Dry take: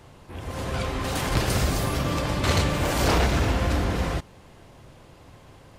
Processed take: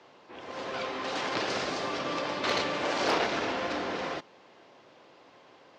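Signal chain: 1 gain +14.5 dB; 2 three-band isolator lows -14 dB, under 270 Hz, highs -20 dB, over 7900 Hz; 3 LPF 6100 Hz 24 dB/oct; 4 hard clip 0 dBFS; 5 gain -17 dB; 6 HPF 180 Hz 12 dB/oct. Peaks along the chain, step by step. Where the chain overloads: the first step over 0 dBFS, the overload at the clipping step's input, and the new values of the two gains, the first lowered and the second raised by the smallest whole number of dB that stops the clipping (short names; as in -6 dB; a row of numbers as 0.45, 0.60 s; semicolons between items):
+2.0, +4.0, +4.0, 0.0, -17.0, -15.5 dBFS; step 1, 4.0 dB; step 1 +10.5 dB, step 5 -13 dB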